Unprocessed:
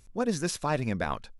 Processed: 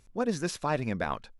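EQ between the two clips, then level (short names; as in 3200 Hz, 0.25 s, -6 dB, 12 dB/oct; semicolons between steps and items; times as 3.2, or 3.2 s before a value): low shelf 130 Hz -5 dB; high shelf 6000 Hz -7.5 dB; 0.0 dB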